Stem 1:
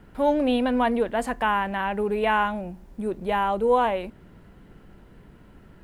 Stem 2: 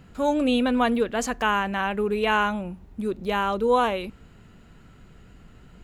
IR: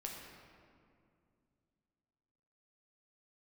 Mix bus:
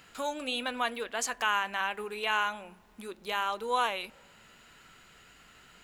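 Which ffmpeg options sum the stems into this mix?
-filter_complex "[0:a]acrossover=split=140[a][b];[b]acompressor=threshold=-23dB:ratio=6[c];[a][c]amix=inputs=2:normalize=0,flanger=delay=17.5:depth=6.5:speed=1.6,volume=-16.5dB,asplit=3[d][e][f];[e]volume=-5.5dB[g];[1:a]lowshelf=f=250:g=-12,volume=-0.5dB[h];[f]apad=whole_len=257300[i];[h][i]sidechaincompress=threshold=-49dB:ratio=4:attack=25:release=1110[j];[2:a]atrim=start_sample=2205[k];[g][k]afir=irnorm=-1:irlink=0[l];[d][j][l]amix=inputs=3:normalize=0,tiltshelf=f=850:g=-7.5"

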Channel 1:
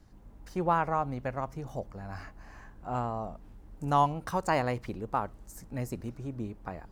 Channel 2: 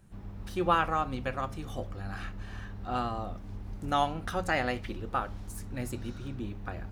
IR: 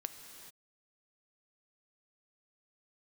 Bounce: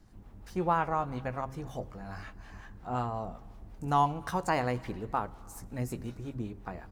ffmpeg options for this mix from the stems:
-filter_complex "[0:a]bandreject=f=580:w=12,volume=-3dB,asplit=3[a][b][c];[b]volume=-9dB[d];[1:a]acrossover=split=470[e][f];[e]aeval=exprs='val(0)*(1-1/2+1/2*cos(2*PI*5.5*n/s))':c=same[g];[f]aeval=exprs='val(0)*(1-1/2-1/2*cos(2*PI*5.5*n/s))':c=same[h];[g][h]amix=inputs=2:normalize=0,volume=-1,adelay=12,volume=-5dB[i];[c]apad=whole_len=305665[j];[i][j]sidechaincompress=threshold=-34dB:ratio=8:attack=16:release=198[k];[2:a]atrim=start_sample=2205[l];[d][l]afir=irnorm=-1:irlink=0[m];[a][k][m]amix=inputs=3:normalize=0,bandreject=f=133.7:t=h:w=4,bandreject=f=267.4:t=h:w=4,bandreject=f=401.1:t=h:w=4"

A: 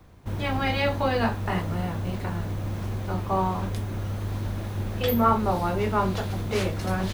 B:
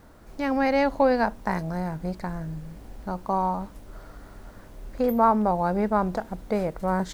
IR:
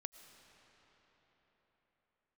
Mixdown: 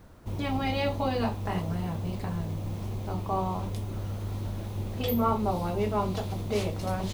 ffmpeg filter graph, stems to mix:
-filter_complex "[0:a]equalizer=f=1.6k:w=2.3:g=-11.5,volume=-3.5dB[a];[1:a]acompressor=threshold=-30dB:ratio=6,volume=-4dB[b];[a][b]amix=inputs=2:normalize=0"

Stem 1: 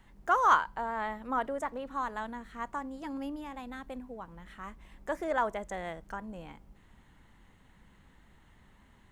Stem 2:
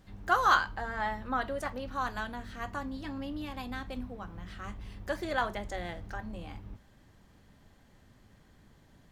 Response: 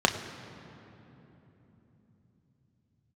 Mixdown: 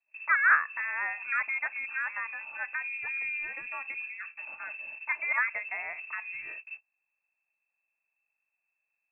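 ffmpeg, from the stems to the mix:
-filter_complex "[0:a]volume=1dB,asplit=2[a][b];[1:a]bandreject=f=1.3k:w=12,aeval=exprs='val(0)+0.00251*(sin(2*PI*50*n/s)+sin(2*PI*2*50*n/s)/2+sin(2*PI*3*50*n/s)/3+sin(2*PI*4*50*n/s)/4+sin(2*PI*5*50*n/s)/5)':c=same,volume=-0.5dB[c];[b]apad=whole_len=401875[d];[c][d]sidechaincompress=threshold=-40dB:ratio=8:attack=16:release=141[e];[a][e]amix=inputs=2:normalize=0,agate=range=-31dB:threshold=-42dB:ratio=16:detection=peak,lowpass=f=2.3k:t=q:w=0.5098,lowpass=f=2.3k:t=q:w=0.6013,lowpass=f=2.3k:t=q:w=0.9,lowpass=f=2.3k:t=q:w=2.563,afreqshift=-2700"

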